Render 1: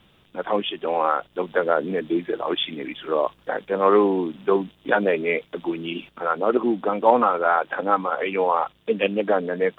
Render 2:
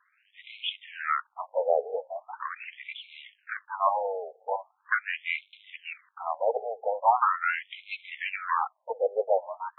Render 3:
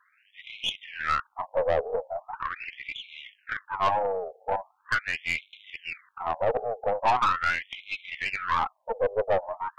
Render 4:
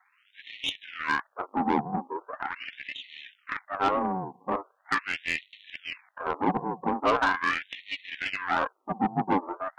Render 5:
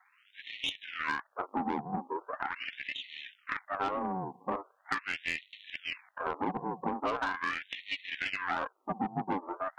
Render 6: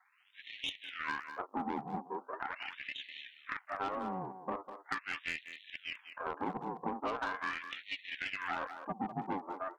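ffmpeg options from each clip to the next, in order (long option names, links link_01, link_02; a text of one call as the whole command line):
ffmpeg -i in.wav -af "aeval=exprs='if(lt(val(0),0),0.251*val(0),val(0))':channel_layout=same,afftfilt=real='re*between(b*sr/1024,580*pow(3000/580,0.5+0.5*sin(2*PI*0.41*pts/sr))/1.41,580*pow(3000/580,0.5+0.5*sin(2*PI*0.41*pts/sr))*1.41)':imag='im*between(b*sr/1024,580*pow(3000/580,0.5+0.5*sin(2*PI*0.41*pts/sr))/1.41,580*pow(3000/580,0.5+0.5*sin(2*PI*0.41*pts/sr))*1.41)':win_size=1024:overlap=0.75,volume=1.5dB" out.wav
ffmpeg -i in.wav -af "aeval=exprs='(tanh(12.6*val(0)+0.35)-tanh(0.35))/12.6':channel_layout=same,volume=4.5dB" out.wav
ffmpeg -i in.wav -af "aeval=exprs='val(0)*sin(2*PI*280*n/s)':channel_layout=same,volume=2dB" out.wav
ffmpeg -i in.wav -af "acompressor=threshold=-30dB:ratio=4" out.wav
ffmpeg -i in.wav -filter_complex "[0:a]asplit=2[link_01][link_02];[link_02]adelay=200,highpass=300,lowpass=3400,asoftclip=type=hard:threshold=-25.5dB,volume=-9dB[link_03];[link_01][link_03]amix=inputs=2:normalize=0,volume=-4.5dB" out.wav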